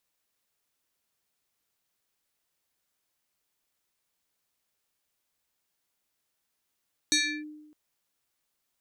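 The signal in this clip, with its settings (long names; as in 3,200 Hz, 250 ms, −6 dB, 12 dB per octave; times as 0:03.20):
two-operator FM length 0.61 s, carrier 303 Hz, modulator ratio 6.75, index 3.5, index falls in 0.32 s linear, decay 1.03 s, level −19 dB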